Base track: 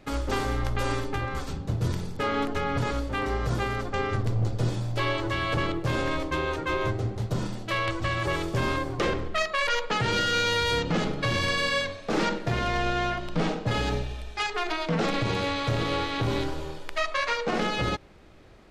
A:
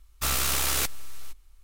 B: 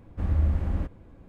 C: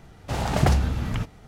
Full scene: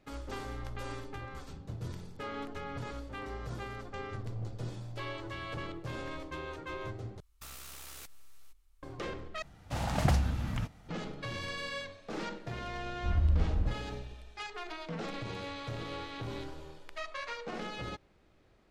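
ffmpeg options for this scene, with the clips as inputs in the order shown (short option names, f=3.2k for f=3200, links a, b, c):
-filter_complex "[0:a]volume=-13dB[a];[1:a]acompressor=threshold=-34dB:ratio=6:attack=3.2:release=140:knee=1:detection=peak[b];[3:a]equalizer=f=410:t=o:w=0.29:g=-9.5[c];[2:a]lowshelf=f=82:g=10.5[d];[a]asplit=3[e][f][g];[e]atrim=end=7.204[h];[b]atrim=end=1.63,asetpts=PTS-STARTPTS,volume=-12dB[i];[f]atrim=start=8.826:end=9.424[j];[c]atrim=end=1.47,asetpts=PTS-STARTPTS,volume=-7dB[k];[g]atrim=start=10.886[l];[d]atrim=end=1.28,asetpts=PTS-STARTPTS,volume=-9.5dB,afade=t=in:d=0.004:c=hsin,afade=t=out:st=1.276:d=0.004:c=hsin,adelay=12860[m];[h][i]acrossfade=d=0.004:c1=hsin:c2=hsin[n];[n][j]acrossfade=d=0.004:c1=hsin:c2=hsin[o];[o][k]acrossfade=d=0.004:c1=hsin:c2=hsin[p];[p][l]acrossfade=d=0.004:c1=hsin:c2=hsin[q];[q][m]amix=inputs=2:normalize=0"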